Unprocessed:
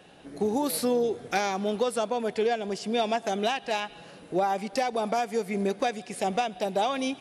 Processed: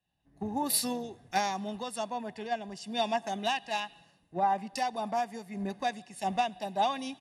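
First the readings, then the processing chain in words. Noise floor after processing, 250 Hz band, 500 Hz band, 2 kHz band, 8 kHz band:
−70 dBFS, −6.0 dB, −9.5 dB, −4.0 dB, +1.0 dB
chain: comb filter 1.1 ms, depth 61%
multiband upward and downward expander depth 100%
level −5.5 dB

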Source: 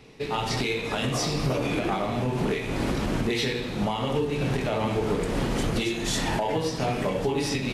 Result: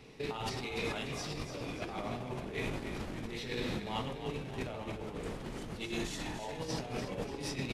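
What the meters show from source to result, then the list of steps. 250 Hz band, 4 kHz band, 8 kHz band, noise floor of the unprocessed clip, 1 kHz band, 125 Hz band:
−12.5 dB, −11.0 dB, −12.0 dB, −32 dBFS, −12.5 dB, −12.5 dB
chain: compressor whose output falls as the input rises −30 dBFS, ratio −0.5
on a send: echo with shifted repeats 292 ms, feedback 50%, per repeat −45 Hz, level −8.5 dB
on the sum: level −8.5 dB

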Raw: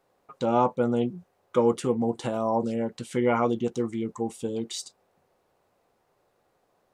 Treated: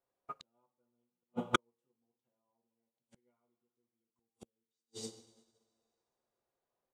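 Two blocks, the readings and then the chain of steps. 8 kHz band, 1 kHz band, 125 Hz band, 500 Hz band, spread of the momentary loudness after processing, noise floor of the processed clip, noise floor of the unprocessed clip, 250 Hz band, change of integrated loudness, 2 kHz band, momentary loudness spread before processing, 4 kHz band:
−11.5 dB, −16.0 dB, −20.5 dB, −24.5 dB, 17 LU, below −85 dBFS, −71 dBFS, −21.0 dB, −13.0 dB, −5.0 dB, 9 LU, −6.0 dB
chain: on a send: single-tap delay 240 ms −16.5 dB
on the sum: coupled-rooms reverb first 0.4 s, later 2.7 s, from −15 dB, DRR 2 dB
gate with flip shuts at −26 dBFS, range −39 dB
expander for the loud parts 2.5 to 1, over −59 dBFS
level +11.5 dB

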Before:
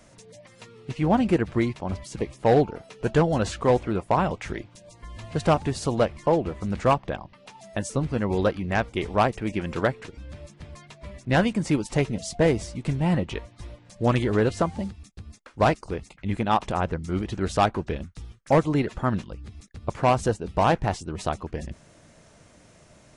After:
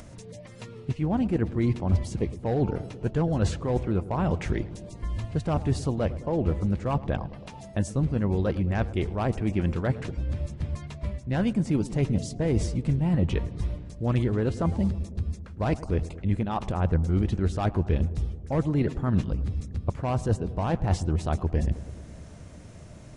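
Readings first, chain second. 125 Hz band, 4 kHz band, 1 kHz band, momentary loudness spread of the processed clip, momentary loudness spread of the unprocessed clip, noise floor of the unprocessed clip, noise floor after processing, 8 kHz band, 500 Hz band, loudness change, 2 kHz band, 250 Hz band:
+3.0 dB, −7.0 dB, −9.0 dB, 9 LU, 19 LU, −55 dBFS, −44 dBFS, −5.0 dB, −6.0 dB, −2.5 dB, −8.0 dB, −1.0 dB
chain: reversed playback
downward compressor 6 to 1, threshold −29 dBFS, peak gain reduction 13.5 dB
reversed playback
low-shelf EQ 350 Hz +10.5 dB
upward compression, threshold −44 dBFS
parametric band 84 Hz +5 dB 0.36 octaves
feedback echo with a low-pass in the loop 108 ms, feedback 78%, low-pass 1,200 Hz, level −16 dB

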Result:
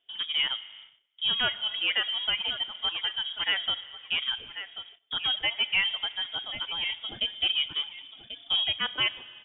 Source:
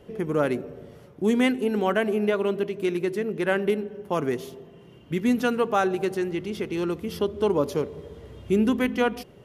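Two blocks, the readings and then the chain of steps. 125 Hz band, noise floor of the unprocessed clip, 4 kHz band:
−19.0 dB, −50 dBFS, +16.5 dB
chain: on a send: repeating echo 1,086 ms, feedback 22%, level −12 dB
on the sum: reverb reduction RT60 1.8 s
low-shelf EQ 400 Hz −8.5 dB
in parallel at −3.5 dB: soft clipping −24.5 dBFS, distortion −11 dB
on the sum: spring reverb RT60 2.3 s, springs 30/35 ms, chirp 65 ms, DRR 15 dB
noise gate −46 dBFS, range −21 dB
voice inversion scrambler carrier 3,500 Hz
level −3.5 dB

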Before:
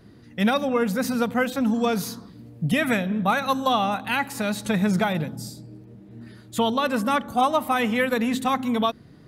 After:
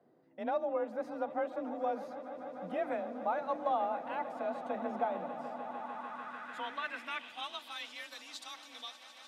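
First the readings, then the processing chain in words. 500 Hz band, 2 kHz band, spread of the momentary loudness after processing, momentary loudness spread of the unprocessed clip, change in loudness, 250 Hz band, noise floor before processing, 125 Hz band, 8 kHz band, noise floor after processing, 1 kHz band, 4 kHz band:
−10.5 dB, −16.5 dB, 11 LU, 9 LU, −14.5 dB, −21.0 dB, −49 dBFS, −30.5 dB, below −20 dB, −56 dBFS, −11.5 dB, −14.5 dB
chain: echo that builds up and dies away 149 ms, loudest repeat 8, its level −17 dB
frequency shifter +35 Hz
band-pass filter sweep 670 Hz → 5,000 Hz, 0:05.55–0:08.01
level −6 dB

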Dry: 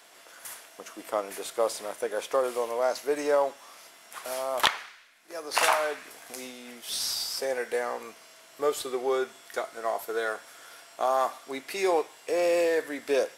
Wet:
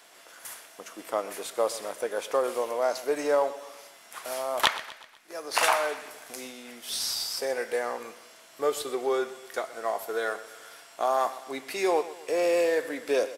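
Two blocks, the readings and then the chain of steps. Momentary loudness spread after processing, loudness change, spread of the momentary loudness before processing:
17 LU, 0.0 dB, 17 LU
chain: repeating echo 124 ms, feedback 49%, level −16.5 dB

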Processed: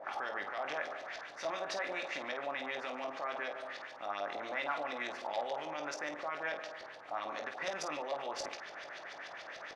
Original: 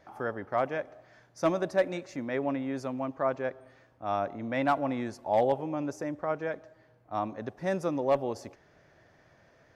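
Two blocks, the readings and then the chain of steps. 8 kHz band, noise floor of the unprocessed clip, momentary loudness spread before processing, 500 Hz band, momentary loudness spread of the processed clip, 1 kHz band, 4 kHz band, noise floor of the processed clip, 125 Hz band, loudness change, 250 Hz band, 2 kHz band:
can't be measured, −63 dBFS, 9 LU, −10.0 dB, 8 LU, −6.0 dB, +5.0 dB, −50 dBFS, −23.0 dB, −8.0 dB, −17.0 dB, +1.5 dB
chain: compressor on every frequency bin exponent 0.6
brickwall limiter −23.5 dBFS, peak gain reduction 11.5 dB
first difference
auto-filter low-pass saw up 6.9 Hz 560–4,900 Hz
ambience of single reflections 20 ms −7.5 dB, 50 ms −8.5 dB
level +10.5 dB

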